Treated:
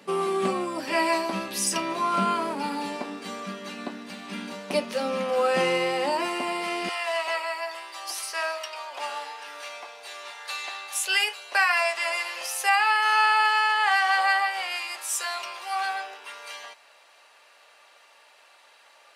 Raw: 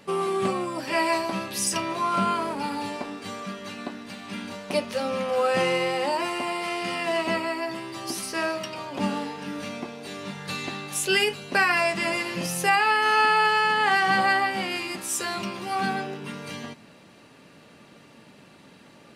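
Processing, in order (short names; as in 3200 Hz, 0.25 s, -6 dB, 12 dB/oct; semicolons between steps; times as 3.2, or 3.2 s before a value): HPF 170 Hz 24 dB/oct, from 6.89 s 650 Hz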